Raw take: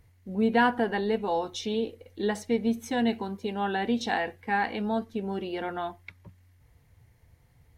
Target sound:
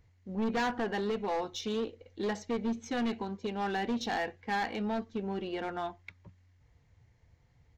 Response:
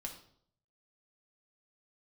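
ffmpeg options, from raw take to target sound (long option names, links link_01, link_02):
-af "volume=24.5dB,asoftclip=hard,volume=-24.5dB,aresample=16000,aresample=44100,aeval=exprs='0.0708*(cos(1*acos(clip(val(0)/0.0708,-1,1)))-cos(1*PI/2))+0.00158*(cos(7*acos(clip(val(0)/0.0708,-1,1)))-cos(7*PI/2))+0.000562*(cos(8*acos(clip(val(0)/0.0708,-1,1)))-cos(8*PI/2))':channel_layout=same,volume=-3dB"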